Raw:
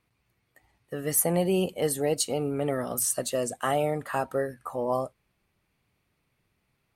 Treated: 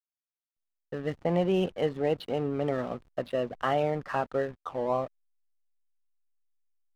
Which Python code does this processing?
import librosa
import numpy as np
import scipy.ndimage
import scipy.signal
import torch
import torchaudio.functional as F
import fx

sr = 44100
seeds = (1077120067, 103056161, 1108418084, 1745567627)

y = scipy.signal.sosfilt(scipy.signal.ellip(4, 1.0, 60, 3500.0, 'lowpass', fs=sr, output='sos'), x)
y = fx.backlash(y, sr, play_db=-38.5)